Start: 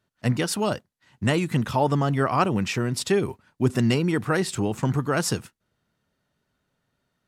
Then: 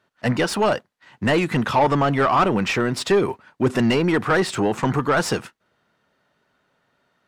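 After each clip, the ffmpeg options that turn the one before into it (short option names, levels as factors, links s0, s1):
-filter_complex "[0:a]asplit=2[s0][s1];[s1]highpass=f=720:p=1,volume=10,asoftclip=type=tanh:threshold=0.422[s2];[s0][s2]amix=inputs=2:normalize=0,lowpass=f=1700:p=1,volume=0.501"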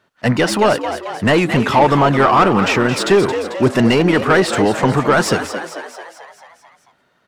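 -filter_complex "[0:a]asplit=8[s0][s1][s2][s3][s4][s5][s6][s7];[s1]adelay=221,afreqshift=81,volume=0.316[s8];[s2]adelay=442,afreqshift=162,volume=0.186[s9];[s3]adelay=663,afreqshift=243,volume=0.11[s10];[s4]adelay=884,afreqshift=324,volume=0.0653[s11];[s5]adelay=1105,afreqshift=405,volume=0.0385[s12];[s6]adelay=1326,afreqshift=486,volume=0.0226[s13];[s7]adelay=1547,afreqshift=567,volume=0.0133[s14];[s0][s8][s9][s10][s11][s12][s13][s14]amix=inputs=8:normalize=0,volume=1.88"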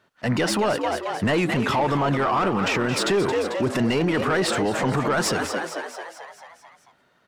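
-af "alimiter=limit=0.237:level=0:latency=1:release=46,volume=0.794"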